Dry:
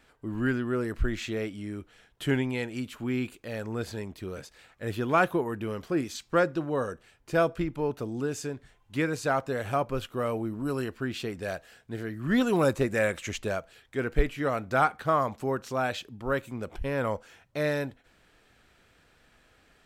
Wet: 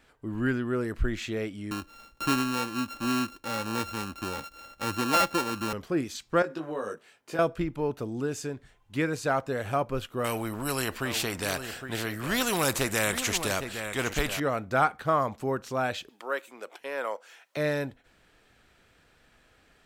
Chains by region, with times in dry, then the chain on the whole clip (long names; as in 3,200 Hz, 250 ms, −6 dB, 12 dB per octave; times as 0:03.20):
0:01.71–0:05.73: samples sorted by size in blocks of 32 samples + comb filter 3.6 ms, depth 46% + multiband upward and downward compressor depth 40%
0:06.42–0:07.39: high-pass filter 260 Hz + downward compressor 4 to 1, threshold −30 dBFS + double-tracking delay 19 ms −3 dB
0:10.24–0:14.40: high-shelf EQ 9,500 Hz +5.5 dB + single-tap delay 811 ms −16 dB + every bin compressed towards the loudest bin 2 to 1
0:16.09–0:17.57: Bessel high-pass filter 540 Hz, order 4 + one half of a high-frequency compander encoder only
whole clip: no processing